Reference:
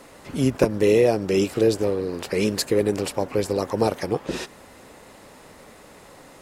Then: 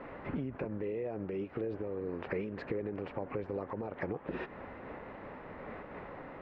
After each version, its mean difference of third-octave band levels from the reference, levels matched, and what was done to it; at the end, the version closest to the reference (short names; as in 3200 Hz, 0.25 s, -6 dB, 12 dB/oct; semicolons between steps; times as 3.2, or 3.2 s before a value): 11.0 dB: LPF 2200 Hz 24 dB/oct; limiter -17 dBFS, peak gain reduction 10.5 dB; compressor 6:1, threshold -36 dBFS, peak gain reduction 14 dB; noise-modulated level, depth 60%; gain +4 dB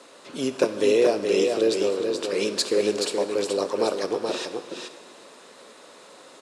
5.5 dB: speaker cabinet 360–9500 Hz, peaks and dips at 800 Hz -6 dB, 2000 Hz -6 dB, 3800 Hz +5 dB; on a send: echo 0.426 s -5 dB; on the sum: plate-style reverb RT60 1.8 s, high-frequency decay 0.9×, DRR 10.5 dB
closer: second